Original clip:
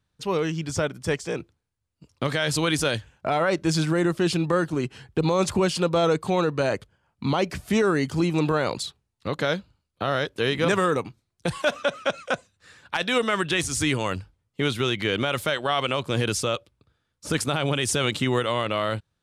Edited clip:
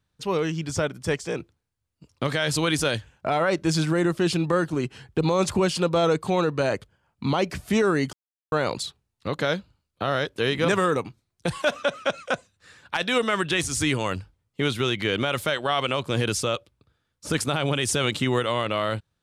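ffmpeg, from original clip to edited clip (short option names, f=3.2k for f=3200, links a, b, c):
-filter_complex "[0:a]asplit=3[a][b][c];[a]atrim=end=8.13,asetpts=PTS-STARTPTS,afade=t=out:st=8.126:d=0.004:c=hsin[d];[b]atrim=start=8.13:end=8.52,asetpts=PTS-STARTPTS,volume=0[e];[c]atrim=start=8.52,asetpts=PTS-STARTPTS,afade=t=in:d=0.004:c=hsin[f];[d][e][f]concat=n=3:v=0:a=1"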